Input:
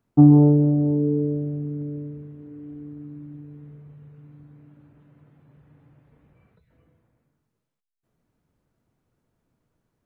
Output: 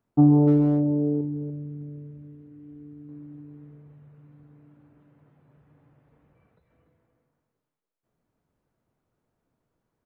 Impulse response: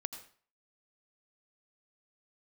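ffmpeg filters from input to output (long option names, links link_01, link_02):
-filter_complex "[0:a]asetnsamples=nb_out_samples=441:pad=0,asendcmd='1.21 equalizer g -4;3.09 equalizer g 4.5',equalizer=frequency=760:width_type=o:width=2.5:gain=4.5,asplit=2[link_01][link_02];[link_02]adelay=290,highpass=300,lowpass=3400,asoftclip=type=hard:threshold=-12dB,volume=-7dB[link_03];[link_01][link_03]amix=inputs=2:normalize=0,volume=-6dB"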